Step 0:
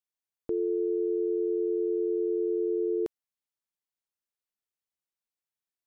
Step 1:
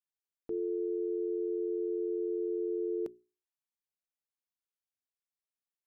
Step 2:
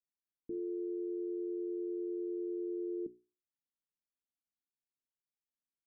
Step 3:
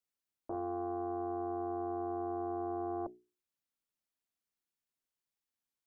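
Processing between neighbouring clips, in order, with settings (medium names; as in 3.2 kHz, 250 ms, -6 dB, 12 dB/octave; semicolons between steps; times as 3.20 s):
hum notches 60/120/180/240/300/360/420 Hz; dynamic bell 210 Hz, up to +6 dB, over -44 dBFS, Q 0.96; trim -7.5 dB
four-pole ladder low-pass 350 Hz, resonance 40%; trim +5 dB
loudspeaker Doppler distortion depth 0.78 ms; trim +2.5 dB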